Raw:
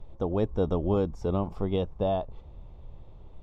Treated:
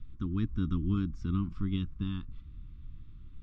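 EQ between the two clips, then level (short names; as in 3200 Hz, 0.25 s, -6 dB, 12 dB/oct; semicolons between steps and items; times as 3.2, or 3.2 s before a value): Chebyshev band-stop 290–1300 Hz, order 3; air absorption 98 m; 0.0 dB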